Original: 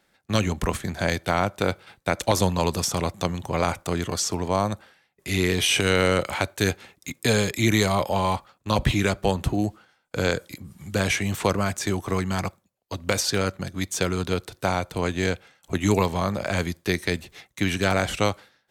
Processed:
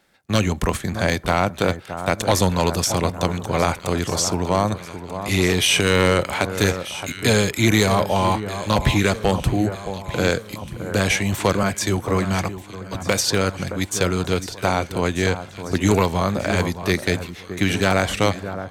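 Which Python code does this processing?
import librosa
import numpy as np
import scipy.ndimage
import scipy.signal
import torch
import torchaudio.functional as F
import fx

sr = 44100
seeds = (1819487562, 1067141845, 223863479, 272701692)

y = fx.echo_alternate(x, sr, ms=619, hz=1500.0, feedback_pct=68, wet_db=-10.5)
y = np.clip(10.0 ** (12.5 / 20.0) * y, -1.0, 1.0) / 10.0 ** (12.5 / 20.0)
y = fx.band_widen(y, sr, depth_pct=40, at=(11.63, 12.95))
y = y * 10.0 ** (4.0 / 20.0)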